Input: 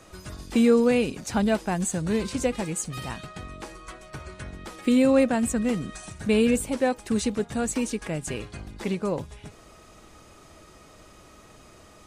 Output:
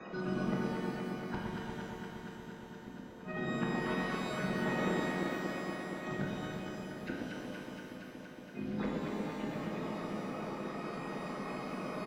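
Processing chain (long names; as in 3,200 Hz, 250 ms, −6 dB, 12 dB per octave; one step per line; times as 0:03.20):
spectral magnitudes quantised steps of 30 dB
high-frequency loss of the air 290 metres
downsampling to 16,000 Hz
low shelf with overshoot 120 Hz −13 dB, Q 3
mains-hum notches 60/120/180/240 Hz
output level in coarse steps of 9 dB
gate with flip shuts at −31 dBFS, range −42 dB
delay that swaps between a low-pass and a high-pass 117 ms, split 1,000 Hz, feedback 90%, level −2.5 dB
reverb with rising layers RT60 1.6 s, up +12 semitones, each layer −8 dB, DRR −2 dB
level +5 dB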